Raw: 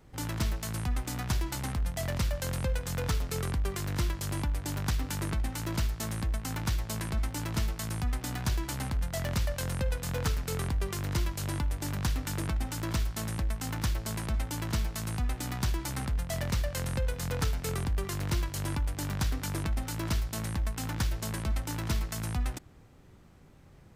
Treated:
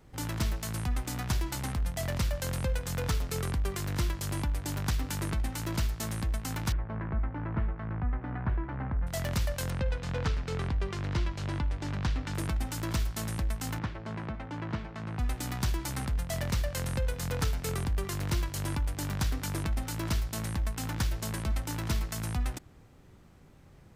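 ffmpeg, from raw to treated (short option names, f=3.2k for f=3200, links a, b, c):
-filter_complex "[0:a]asettb=1/sr,asplit=3[a][b][c];[a]atrim=end=6.724[d];[b]atrim=start=6.72:end=9.07,asetpts=PTS-STARTPTS,afade=t=in:d=0.004:c=qsin,afade=t=out:st=2.346:d=0.004:c=qsin,lowpass=f=1.8k:w=0.5412,lowpass=f=1.8k:w=1.3066[e];[c]atrim=start=9.066[f];[d][e]acrossfade=d=0.004:c1=hsin:c2=qsin[g];[g][f]acrossfade=d=0.004:c1=qsin:c2=hsin,asettb=1/sr,asplit=3[h][i][j];[h]atrim=end=9.704[k];[i]atrim=start=9.7:end=12.35,asetpts=PTS-STARTPTS,afade=t=in:d=0.004:c=qsin,afade=t=out:st=2.646:d=0.004:c=qsin,lowpass=4.2k[l];[j]atrim=start=12.346[m];[k][l]acrossfade=d=0.004:c1=hsin:c2=qsin[n];[n][m]acrossfade=d=0.004:c1=qsin:c2=hsin,asettb=1/sr,asplit=3[o][p][q];[o]atrim=end=13.794[r];[p]atrim=start=13.79:end=15.19,asetpts=PTS-STARTPTS,afade=t=in:d=0.004:c=qsin,afade=t=out:st=1.396:d=0.004:c=qsin,highpass=110,lowpass=2.1k[s];[q]atrim=start=15.186[t];[r][s]acrossfade=d=0.004:c1=hsin:c2=qsin[u];[u][t]acrossfade=d=0.004:c1=qsin:c2=hsin"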